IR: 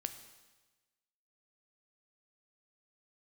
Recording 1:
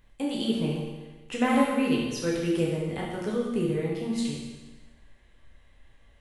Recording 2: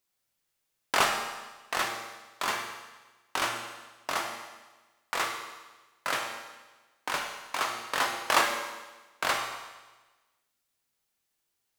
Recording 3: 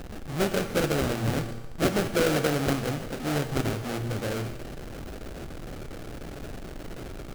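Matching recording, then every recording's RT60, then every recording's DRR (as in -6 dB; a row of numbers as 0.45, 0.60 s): 3; 1.2, 1.2, 1.2 s; -4.5, 2.0, 8.5 dB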